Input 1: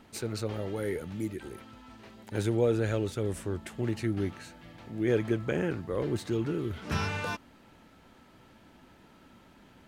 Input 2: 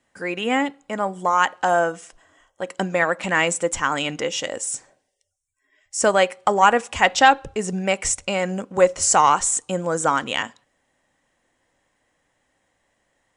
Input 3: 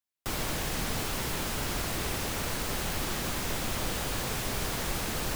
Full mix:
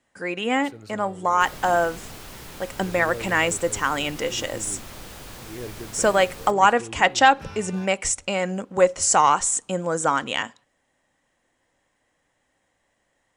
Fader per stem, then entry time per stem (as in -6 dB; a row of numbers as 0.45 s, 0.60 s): -9.5 dB, -1.5 dB, -8.0 dB; 0.50 s, 0.00 s, 1.15 s